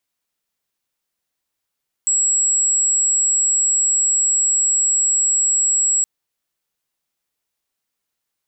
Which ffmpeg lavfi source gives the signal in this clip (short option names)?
-f lavfi -i "sine=f=7720:d=3.97:r=44100,volume=4.06dB"